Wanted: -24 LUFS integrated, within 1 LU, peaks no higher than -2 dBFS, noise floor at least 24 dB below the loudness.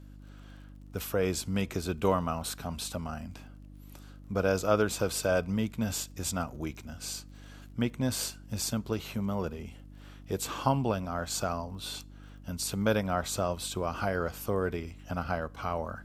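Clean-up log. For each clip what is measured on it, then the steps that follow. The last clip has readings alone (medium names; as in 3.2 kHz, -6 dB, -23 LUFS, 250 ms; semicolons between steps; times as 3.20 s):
tick rate 36 per s; hum 50 Hz; highest harmonic 300 Hz; hum level -48 dBFS; loudness -32.0 LUFS; peak level -11.5 dBFS; loudness target -24.0 LUFS
-> de-click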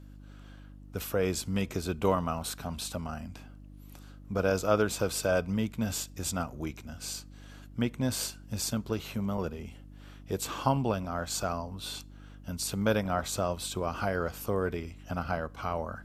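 tick rate 0.062 per s; hum 50 Hz; highest harmonic 300 Hz; hum level -48 dBFS
-> de-hum 50 Hz, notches 6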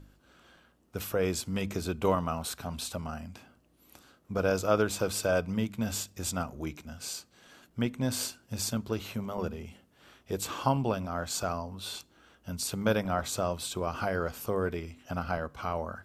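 hum not found; loudness -32.5 LUFS; peak level -11.5 dBFS; loudness target -24.0 LUFS
-> trim +8.5 dB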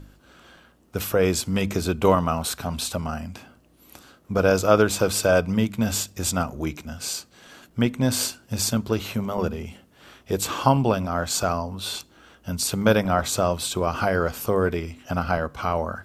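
loudness -24.0 LUFS; peak level -3.0 dBFS; noise floor -58 dBFS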